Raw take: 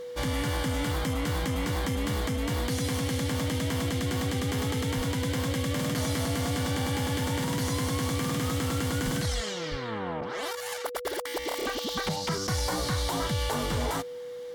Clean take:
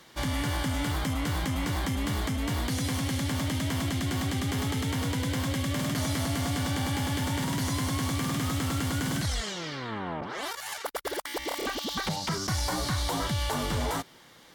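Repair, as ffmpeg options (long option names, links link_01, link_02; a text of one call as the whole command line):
ffmpeg -i in.wav -filter_complex "[0:a]bandreject=frequency=490:width=30,asplit=3[link_01][link_02][link_03];[link_01]afade=type=out:start_time=4.96:duration=0.02[link_04];[link_02]highpass=frequency=140:width=0.5412,highpass=frequency=140:width=1.3066,afade=type=in:start_time=4.96:duration=0.02,afade=type=out:start_time=5.08:duration=0.02[link_05];[link_03]afade=type=in:start_time=5.08:duration=0.02[link_06];[link_04][link_05][link_06]amix=inputs=3:normalize=0,asplit=3[link_07][link_08][link_09];[link_07]afade=type=out:start_time=9.04:duration=0.02[link_10];[link_08]highpass=frequency=140:width=0.5412,highpass=frequency=140:width=1.3066,afade=type=in:start_time=9.04:duration=0.02,afade=type=out:start_time=9.16:duration=0.02[link_11];[link_09]afade=type=in:start_time=9.16:duration=0.02[link_12];[link_10][link_11][link_12]amix=inputs=3:normalize=0,asplit=3[link_13][link_14][link_15];[link_13]afade=type=out:start_time=9.7:duration=0.02[link_16];[link_14]highpass=frequency=140:width=0.5412,highpass=frequency=140:width=1.3066,afade=type=in:start_time=9.7:duration=0.02,afade=type=out:start_time=9.82:duration=0.02[link_17];[link_15]afade=type=in:start_time=9.82:duration=0.02[link_18];[link_16][link_17][link_18]amix=inputs=3:normalize=0" out.wav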